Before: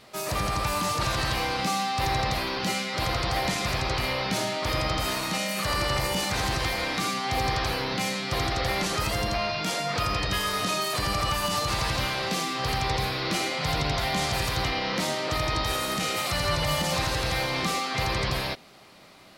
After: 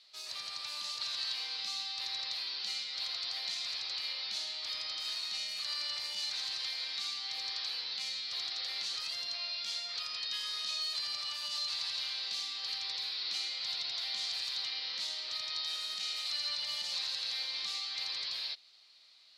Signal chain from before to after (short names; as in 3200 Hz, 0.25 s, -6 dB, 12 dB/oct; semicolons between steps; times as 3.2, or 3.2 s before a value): band-pass 4200 Hz, Q 3.7